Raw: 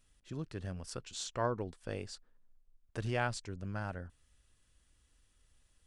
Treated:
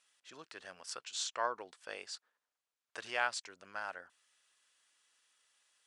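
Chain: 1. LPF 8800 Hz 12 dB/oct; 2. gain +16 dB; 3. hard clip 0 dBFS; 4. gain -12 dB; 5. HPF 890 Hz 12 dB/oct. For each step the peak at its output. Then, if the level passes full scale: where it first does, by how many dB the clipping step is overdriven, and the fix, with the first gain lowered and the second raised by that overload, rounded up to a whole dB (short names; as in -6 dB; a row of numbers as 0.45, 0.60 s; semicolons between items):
-19.5, -3.5, -3.5, -15.5, -17.5 dBFS; no overload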